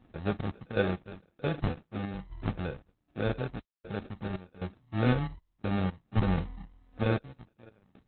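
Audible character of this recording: random-step tremolo 3.9 Hz, depth 100%; phasing stages 8, 1.6 Hz, lowest notch 400–1300 Hz; aliases and images of a low sample rate 1 kHz, jitter 0%; Opus

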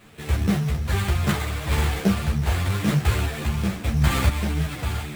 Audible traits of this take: a quantiser's noise floor 8-bit, dither triangular; random-step tremolo; aliases and images of a low sample rate 5.7 kHz, jitter 20%; a shimmering, thickened sound

